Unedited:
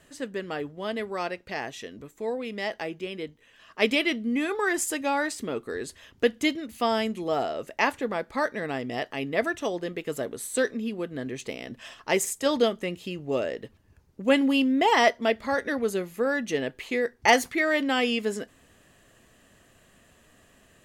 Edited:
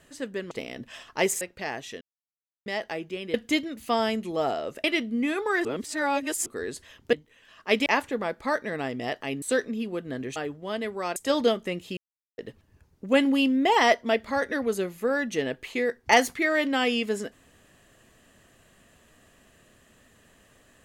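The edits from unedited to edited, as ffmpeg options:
ffmpeg -i in.wav -filter_complex "[0:a]asplit=16[link_01][link_02][link_03][link_04][link_05][link_06][link_07][link_08][link_09][link_10][link_11][link_12][link_13][link_14][link_15][link_16];[link_01]atrim=end=0.512[link_17];[link_02]atrim=start=11.418:end=12.322[link_18];[link_03]atrim=start=1.308:end=1.91,asetpts=PTS-STARTPTS,afade=type=out:start_time=0.598:duration=0.004:curve=hsin[link_19];[link_04]atrim=start=1.91:end=2.56,asetpts=PTS-STARTPTS,volume=0[link_20];[link_05]atrim=start=2.56:end=3.242,asetpts=PTS-STARTPTS,afade=type=in:duration=0.004:curve=hsin[link_21];[link_06]atrim=start=6.258:end=7.762[link_22];[link_07]atrim=start=3.968:end=4.782[link_23];[link_08]atrim=start=4.778:end=5.592,asetpts=PTS-STARTPTS,areverse[link_24];[link_09]atrim=start=5.588:end=6.262[link_25];[link_10]atrim=start=3.238:end=3.972[link_26];[link_11]atrim=start=7.758:end=9.322[link_27];[link_12]atrim=start=10.478:end=11.422[link_28];[link_13]atrim=start=0.508:end=1.312[link_29];[link_14]atrim=start=12.318:end=13.13,asetpts=PTS-STARTPTS,afade=type=out:start_time=0.808:duration=0.004:curve=hsin[link_30];[link_15]atrim=start=13.13:end=13.54,asetpts=PTS-STARTPTS,volume=0[link_31];[link_16]atrim=start=13.54,asetpts=PTS-STARTPTS,afade=type=in:duration=0.004:curve=hsin[link_32];[link_17][link_18]acrossfade=duration=0.004:curve1=hsin:curve2=hsin[link_33];[link_19][link_20][link_21]concat=n=3:v=0:a=1[link_34];[link_33][link_34]acrossfade=duration=0.004:curve1=hsin:curve2=hsin[link_35];[link_35][link_22]acrossfade=duration=0.004:curve1=hsin:curve2=hsin[link_36];[link_36][link_23]acrossfade=duration=0.004:curve1=hsin:curve2=hsin[link_37];[link_37][link_24]acrossfade=duration=0.004:curve1=hsin:curve2=hsin[link_38];[link_38][link_25]acrossfade=duration=0.004:curve1=hsin:curve2=hsin[link_39];[link_39][link_26]acrossfade=duration=0.004:curve1=hsin:curve2=hsin[link_40];[link_40][link_27]acrossfade=duration=0.004:curve1=hsin:curve2=hsin[link_41];[link_41][link_28]acrossfade=duration=0.004:curve1=hsin:curve2=hsin[link_42];[link_42][link_29]acrossfade=duration=0.004:curve1=hsin:curve2=hsin[link_43];[link_30][link_31][link_32]concat=n=3:v=0:a=1[link_44];[link_43][link_44]acrossfade=duration=0.004:curve1=hsin:curve2=hsin" out.wav

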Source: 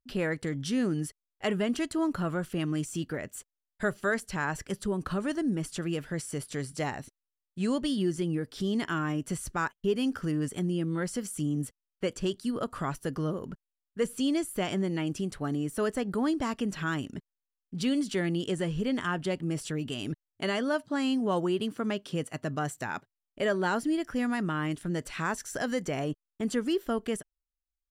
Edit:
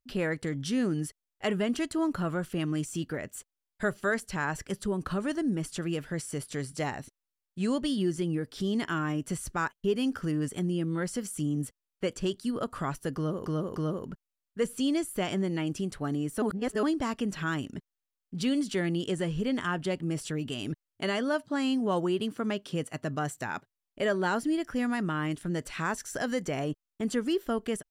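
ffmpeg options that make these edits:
ffmpeg -i in.wav -filter_complex "[0:a]asplit=5[link_01][link_02][link_03][link_04][link_05];[link_01]atrim=end=13.462[link_06];[link_02]atrim=start=13.158:end=13.462[link_07];[link_03]atrim=start=13.158:end=15.822[link_08];[link_04]atrim=start=15.818:end=16.232,asetpts=PTS-STARTPTS,areverse[link_09];[link_05]atrim=start=16.228[link_10];[link_06][link_07]acrossfade=duration=0.004:curve1=hsin:curve2=hsin[link_11];[link_11][link_08]acrossfade=duration=0.004:curve1=hsin:curve2=hsin[link_12];[link_12][link_09]acrossfade=duration=0.004:curve1=hsin:curve2=hsin[link_13];[link_13][link_10]acrossfade=duration=0.004:curve1=hsin:curve2=hsin" out.wav

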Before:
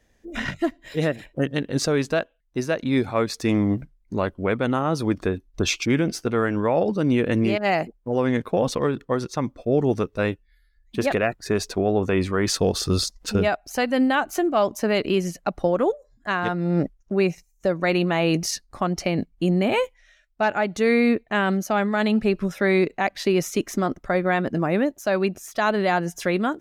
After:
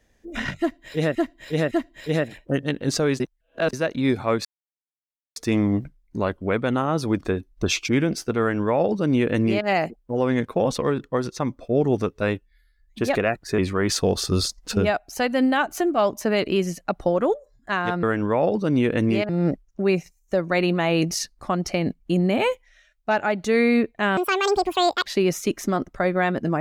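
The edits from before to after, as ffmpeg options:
ffmpeg -i in.wav -filter_complex "[0:a]asplit=11[link_01][link_02][link_03][link_04][link_05][link_06][link_07][link_08][link_09][link_10][link_11];[link_01]atrim=end=1.152[link_12];[link_02]atrim=start=0.588:end=1.152[link_13];[link_03]atrim=start=0.588:end=2.082[link_14];[link_04]atrim=start=2.078:end=2.612,asetpts=PTS-STARTPTS,areverse[link_15];[link_05]atrim=start=2.608:end=3.33,asetpts=PTS-STARTPTS,afade=type=out:start_time=0.718:duration=0.004:curve=hsin,apad=pad_dur=0.91[link_16];[link_06]atrim=start=3.33:end=11.552,asetpts=PTS-STARTPTS,afade=type=in:duration=0.004:curve=hsin[link_17];[link_07]atrim=start=12.158:end=16.612[link_18];[link_08]atrim=start=6.368:end=7.632[link_19];[link_09]atrim=start=16.608:end=21.494[link_20];[link_10]atrim=start=21.49:end=23.16,asetpts=PTS-STARTPTS,asetrate=82467,aresample=44100,atrim=end_sample=39383,asetpts=PTS-STARTPTS[link_21];[link_11]atrim=start=23.156[link_22];[link_12][link_13]acrossfade=duration=0.004:curve1=hsin:curve2=hsin[link_23];[link_23][link_14]acrossfade=duration=0.004:curve1=hsin:curve2=hsin[link_24];[link_24][link_15]acrossfade=duration=0.004:curve1=hsin:curve2=hsin[link_25];[link_16][link_17]concat=n=2:v=0:a=1[link_26];[link_25][link_26]acrossfade=duration=0.004:curve1=hsin:curve2=hsin[link_27];[link_27][link_18]acrossfade=duration=0.004:curve1=hsin:curve2=hsin[link_28];[link_28][link_19]acrossfade=duration=0.004:curve1=hsin:curve2=hsin[link_29];[link_29][link_20]acrossfade=duration=0.004:curve1=hsin:curve2=hsin[link_30];[link_30][link_21]acrossfade=duration=0.004:curve1=hsin:curve2=hsin[link_31];[link_31][link_22]acrossfade=duration=0.004:curve1=hsin:curve2=hsin" out.wav

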